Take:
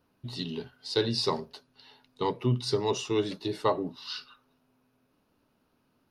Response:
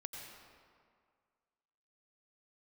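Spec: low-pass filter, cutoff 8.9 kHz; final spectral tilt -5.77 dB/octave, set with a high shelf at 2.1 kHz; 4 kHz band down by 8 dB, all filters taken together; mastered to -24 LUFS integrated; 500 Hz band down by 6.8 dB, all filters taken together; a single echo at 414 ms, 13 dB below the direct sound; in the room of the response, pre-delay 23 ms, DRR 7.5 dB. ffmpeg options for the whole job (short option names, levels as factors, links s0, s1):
-filter_complex "[0:a]lowpass=8900,equalizer=f=500:t=o:g=-8.5,highshelf=f=2100:g=-3.5,equalizer=f=4000:t=o:g=-6,aecho=1:1:414:0.224,asplit=2[s0][s1];[1:a]atrim=start_sample=2205,adelay=23[s2];[s1][s2]afir=irnorm=-1:irlink=0,volume=0.562[s3];[s0][s3]amix=inputs=2:normalize=0,volume=3.16"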